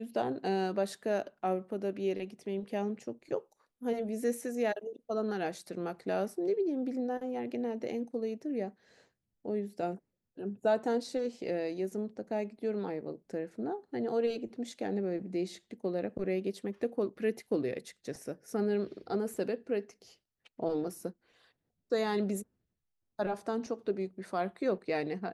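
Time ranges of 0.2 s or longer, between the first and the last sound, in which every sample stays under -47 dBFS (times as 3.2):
3.4–3.82
8.7–9.45
9.97–10.38
20.08–20.46
21.11–21.92
22.43–23.19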